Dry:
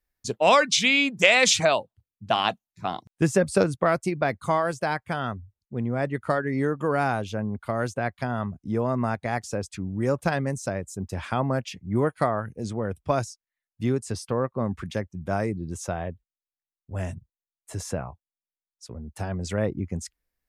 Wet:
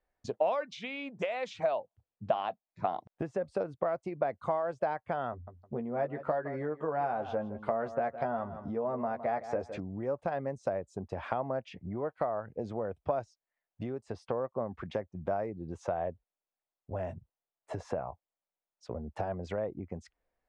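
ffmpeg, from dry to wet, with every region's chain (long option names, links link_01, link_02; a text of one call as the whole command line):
ffmpeg -i in.wav -filter_complex "[0:a]asettb=1/sr,asplit=3[link_01][link_02][link_03];[link_01]atrim=end=5.314[link_04];[link_02]atrim=start=5.31:end=9.8,asetpts=PTS-STARTPTS,afade=type=in:duration=0.004:curve=qsin,afade=type=out:start_time=4.486:duration=0.004:curve=qsin,asplit=2[link_05][link_06];[link_06]adelay=13,volume=-5dB[link_07];[link_05][link_07]amix=inputs=2:normalize=0,atrim=end_sample=198009,aecho=1:1:161|322:0.158|0.0333,atrim=end_sample=198009[link_08];[link_03]atrim=start=9.796[link_09];[link_04][link_08]acrossfade=duration=0.004:curve1=hsin:curve2=qsin[link_10];[link_10][link_09]acrossfade=duration=0.004:curve1=qsin:curve2=hsin,acompressor=threshold=-35dB:ratio=16,lowpass=3200,equalizer=frequency=650:width=0.82:gain=14,volume=-3dB" out.wav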